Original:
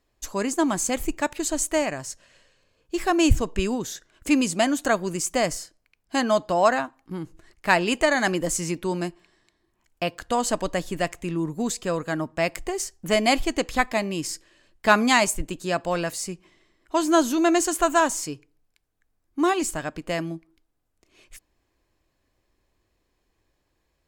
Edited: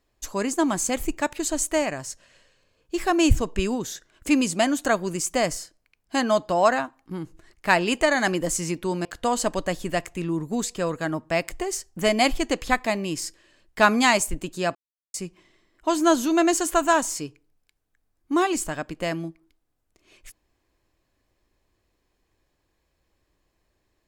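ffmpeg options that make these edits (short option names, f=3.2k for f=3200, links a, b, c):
-filter_complex "[0:a]asplit=4[a][b][c][d];[a]atrim=end=9.052[e];[b]atrim=start=10.118:end=15.82,asetpts=PTS-STARTPTS,afade=t=out:st=5.698:d=0.004:c=hsin[f];[c]atrim=start=15.82:end=16.21,asetpts=PTS-STARTPTS,volume=0[g];[d]atrim=start=16.21,asetpts=PTS-STARTPTS,afade=t=in:d=0.004:c=hsin[h];[f][g][h]concat=n=3:v=0:a=1[i];[e][i]acrossfade=d=0.004:c1=hsin:c2=hsin"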